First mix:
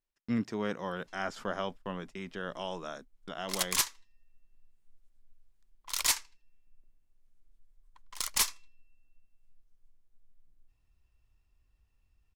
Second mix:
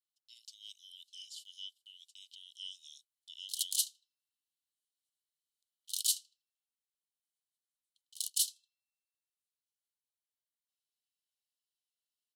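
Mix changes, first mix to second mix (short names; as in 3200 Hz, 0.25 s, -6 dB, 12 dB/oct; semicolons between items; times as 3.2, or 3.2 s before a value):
speech +5.0 dB; master: add rippled Chebyshev high-pass 2900 Hz, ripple 6 dB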